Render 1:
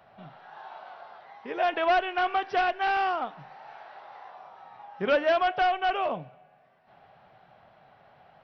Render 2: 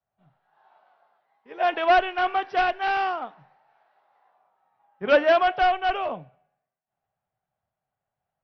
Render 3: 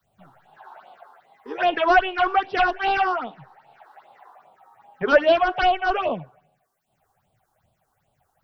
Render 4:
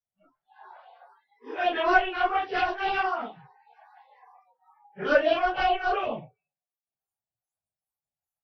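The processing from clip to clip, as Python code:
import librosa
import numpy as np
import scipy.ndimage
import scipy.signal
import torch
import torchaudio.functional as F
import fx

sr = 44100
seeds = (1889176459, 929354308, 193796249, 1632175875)

y1 = fx.band_widen(x, sr, depth_pct=100)
y1 = y1 * librosa.db_to_amplitude(1.0)
y2 = fx.phaser_stages(y1, sr, stages=6, low_hz=150.0, high_hz=1800.0, hz=2.5, feedback_pct=25)
y2 = fx.band_squash(y2, sr, depth_pct=40)
y2 = y2 * librosa.db_to_amplitude(6.5)
y3 = fx.phase_scramble(y2, sr, seeds[0], window_ms=100)
y3 = fx.noise_reduce_blind(y3, sr, reduce_db=27)
y3 = y3 * librosa.db_to_amplitude(-4.5)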